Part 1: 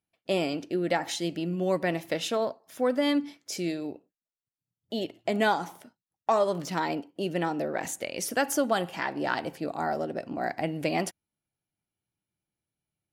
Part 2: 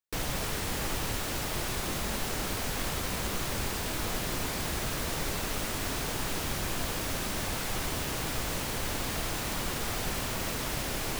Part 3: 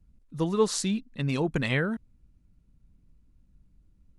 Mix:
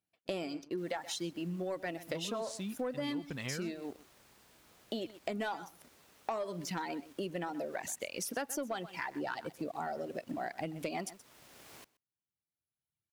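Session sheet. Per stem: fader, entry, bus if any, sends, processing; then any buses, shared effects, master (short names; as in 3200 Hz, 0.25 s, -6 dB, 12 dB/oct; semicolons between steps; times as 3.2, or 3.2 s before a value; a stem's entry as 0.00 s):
-0.5 dB, 0.00 s, no send, echo send -19 dB, reverb removal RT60 1.9 s
-19.0 dB, 0.65 s, no send, echo send -20.5 dB, low shelf 170 Hz -10 dB; auto duck -8 dB, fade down 1.75 s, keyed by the first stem
-10.0 dB, 1.75 s, no send, no echo send, dry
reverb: off
echo: echo 0.126 s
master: HPF 66 Hz; sample leveller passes 1; compressor 4:1, threshold -37 dBFS, peak gain reduction 15 dB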